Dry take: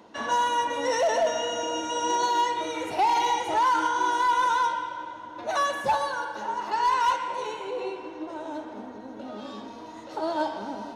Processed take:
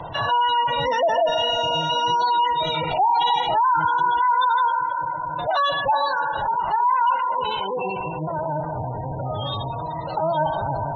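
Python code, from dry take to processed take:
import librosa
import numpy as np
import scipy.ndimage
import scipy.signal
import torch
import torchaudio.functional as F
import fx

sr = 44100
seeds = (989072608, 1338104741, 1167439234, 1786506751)

y = fx.octave_divider(x, sr, octaves=1, level_db=1.0)
y = fx.spec_gate(y, sr, threshold_db=-20, keep='strong')
y = fx.curve_eq(y, sr, hz=(150.0, 220.0, 420.0, 700.0, 2300.0, 3500.0, 5400.0), db=(0, -14, -7, 4, -1, 14, -11))
y = fx.env_flatten(y, sr, amount_pct=50)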